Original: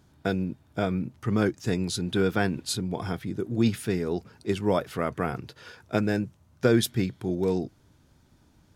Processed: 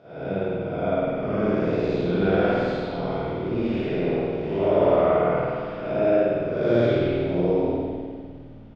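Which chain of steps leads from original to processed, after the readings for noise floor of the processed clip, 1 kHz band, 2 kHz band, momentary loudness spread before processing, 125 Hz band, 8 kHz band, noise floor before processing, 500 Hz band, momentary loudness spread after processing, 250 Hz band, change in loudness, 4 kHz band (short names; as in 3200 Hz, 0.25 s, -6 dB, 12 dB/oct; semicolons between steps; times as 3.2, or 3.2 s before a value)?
-41 dBFS, +6.0 dB, +1.0 dB, 8 LU, +0.5 dB, under -25 dB, -62 dBFS, +8.0 dB, 8 LU, +2.0 dB, +4.5 dB, -5.0 dB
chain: time blur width 0.299 s; speaker cabinet 170–4400 Hz, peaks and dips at 220 Hz -7 dB, 310 Hz -4 dB, 610 Hz +10 dB, 1700 Hz -7 dB, 3900 Hz -6 dB; on a send: frequency-shifting echo 0.259 s, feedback 57%, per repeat -100 Hz, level -15 dB; on the sum: spring tank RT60 1.7 s, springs 51 ms, chirp 45 ms, DRR -9.5 dB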